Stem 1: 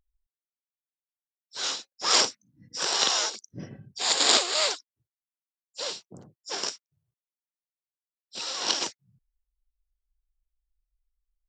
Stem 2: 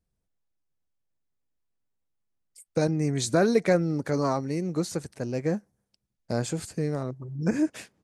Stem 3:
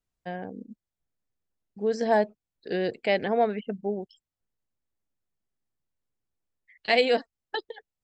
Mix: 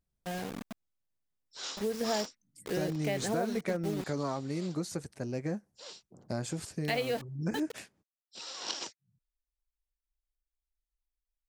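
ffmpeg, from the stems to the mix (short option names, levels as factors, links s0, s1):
-filter_complex "[0:a]volume=0.316[s0];[1:a]bandreject=f=470:w=12,volume=0.596,asplit=2[s1][s2];[2:a]lowshelf=f=150:g=10,acrusher=bits=5:mix=0:aa=0.000001,volume=0.596[s3];[s2]apad=whole_len=506466[s4];[s0][s4]sidechaincompress=threshold=0.00501:ratio=8:attack=6.4:release=339[s5];[s5][s1][s3]amix=inputs=3:normalize=0,acompressor=threshold=0.0355:ratio=4"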